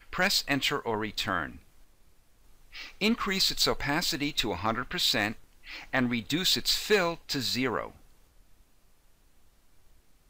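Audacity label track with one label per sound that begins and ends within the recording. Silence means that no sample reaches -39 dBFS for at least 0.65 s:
2.740000	7.900000	sound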